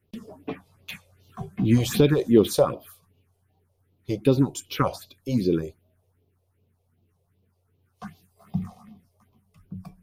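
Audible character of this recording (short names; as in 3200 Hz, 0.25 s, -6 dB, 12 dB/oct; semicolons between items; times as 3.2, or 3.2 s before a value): phasing stages 4, 2.6 Hz, lowest notch 240–1700 Hz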